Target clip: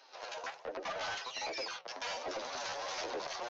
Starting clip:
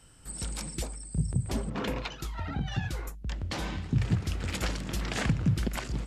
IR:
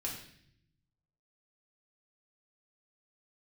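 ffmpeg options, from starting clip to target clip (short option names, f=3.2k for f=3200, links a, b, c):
-af "highpass=f=200:w=0.5412,highpass=f=200:w=1.3066,alimiter=level_in=2.5dB:limit=-24dB:level=0:latency=1:release=46,volume=-2.5dB,asetrate=76340,aresample=44100,atempo=0.577676,aresample=8000,asoftclip=type=tanh:threshold=-39.5dB,aresample=44100,flanger=delay=5.4:depth=9.5:regen=75:speed=0.76:shape=sinusoidal,asetrate=76440,aresample=44100,volume=9dB"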